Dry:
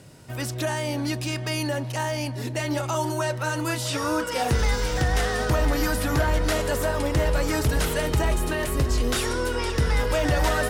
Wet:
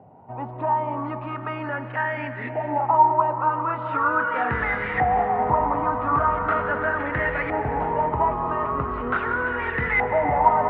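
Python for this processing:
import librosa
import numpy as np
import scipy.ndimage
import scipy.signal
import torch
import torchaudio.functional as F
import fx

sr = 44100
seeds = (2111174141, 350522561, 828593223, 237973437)

y = fx.filter_lfo_lowpass(x, sr, shape='saw_up', hz=0.4, low_hz=760.0, high_hz=2000.0, q=6.7)
y = fx.cabinet(y, sr, low_hz=120.0, low_slope=12, high_hz=3000.0, hz=(140.0, 330.0, 560.0, 1600.0), db=(-6, -8, -6, -7))
y = fx.rev_freeverb(y, sr, rt60_s=3.7, hf_ratio=0.45, predelay_ms=120, drr_db=9.0)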